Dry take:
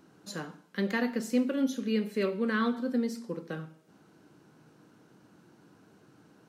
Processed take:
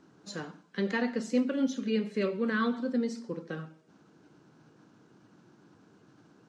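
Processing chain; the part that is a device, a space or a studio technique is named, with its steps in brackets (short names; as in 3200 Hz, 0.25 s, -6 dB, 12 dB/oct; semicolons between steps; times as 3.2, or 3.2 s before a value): clip after many re-uploads (LPF 7500 Hz 24 dB/oct; bin magnitudes rounded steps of 15 dB)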